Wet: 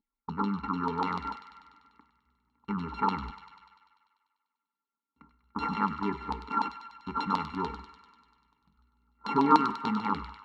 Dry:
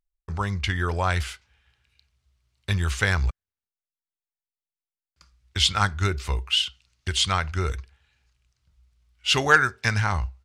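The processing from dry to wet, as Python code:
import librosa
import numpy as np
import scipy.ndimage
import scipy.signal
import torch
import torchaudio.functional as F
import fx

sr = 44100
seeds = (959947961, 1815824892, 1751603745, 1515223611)

p1 = np.r_[np.sort(x[:len(x) // 32 * 32].reshape(-1, 32), axis=1).ravel(), x[len(x) // 32 * 32:]]
p2 = fx.low_shelf(p1, sr, hz=96.0, db=9.5)
p3 = fx.over_compress(p2, sr, threshold_db=-31.0, ratio=-1.0)
p4 = p2 + (p3 * 10.0 ** (-1.5 / 20.0))
p5 = fx.vowel_filter(p4, sr, vowel='u')
p6 = fx.fixed_phaser(p5, sr, hz=510.0, stages=8)
p7 = fx.small_body(p6, sr, hz=(210.0, 410.0, 830.0, 1700.0), ring_ms=35, db=9)
p8 = fx.filter_lfo_lowpass(p7, sr, shape='saw_down', hz=6.8, low_hz=920.0, high_hz=4200.0, q=4.5)
p9 = p8 + fx.echo_wet_highpass(p8, sr, ms=98, feedback_pct=69, hz=1700.0, wet_db=-8.0, dry=0)
p10 = fx.rev_plate(p9, sr, seeds[0], rt60_s=1.1, hf_ratio=0.8, predelay_ms=0, drr_db=19.5)
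y = p10 * 10.0 ** (8.0 / 20.0)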